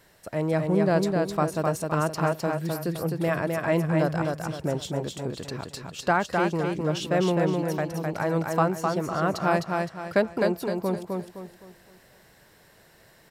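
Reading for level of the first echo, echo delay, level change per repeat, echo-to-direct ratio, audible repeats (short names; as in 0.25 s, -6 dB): -3.5 dB, 0.258 s, -9.0 dB, -3.0 dB, 4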